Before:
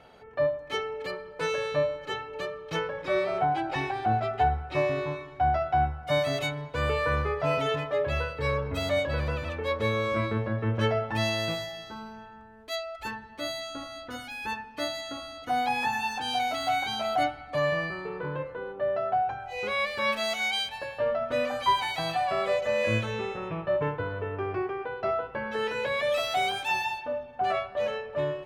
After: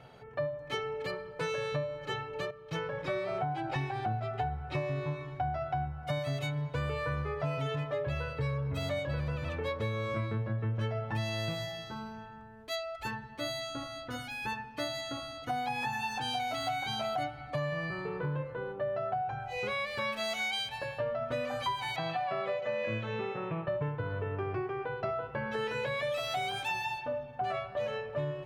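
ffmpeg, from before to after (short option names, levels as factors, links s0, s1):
-filter_complex "[0:a]asettb=1/sr,asplit=3[s0][s1][s2];[s0]atrim=end=21.964[s3];[s1]atrim=start=21.96:end=23.68,asetpts=PTS-STARTPTS,afade=t=in:d=0.004:c=qsin,afade=t=out:st=1.716:d=0.004:c=qsin,highpass=170,lowpass=3400[s4];[s2]atrim=start=23.676[s5];[s3][s4]acrossfade=d=0.004:c1=hsin:c2=qsin[s6];[s6][s5]acrossfade=d=0.004:c1=qsin:c2=hsin,asplit=2[s7][s8];[s7]atrim=end=2.51,asetpts=PTS-STARTPTS,afade=t=out:st=2.506:d=0.004:c=hsin:silence=0.251189[s9];[s8]atrim=start=2.51,asetpts=PTS-STARTPTS,afade=t=in:d=0.48:silence=0.251189[s10];[s9][s10]concat=n=2:v=0:a=1,equalizer=f=130:w=3.2:g=15,acompressor=threshold=0.0355:ratio=6,volume=0.841"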